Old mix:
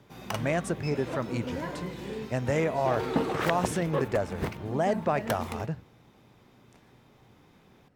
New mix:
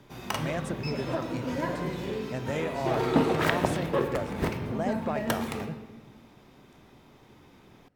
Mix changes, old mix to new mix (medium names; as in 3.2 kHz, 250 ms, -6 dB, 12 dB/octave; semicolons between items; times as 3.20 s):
speech -5.5 dB; reverb: on, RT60 1.3 s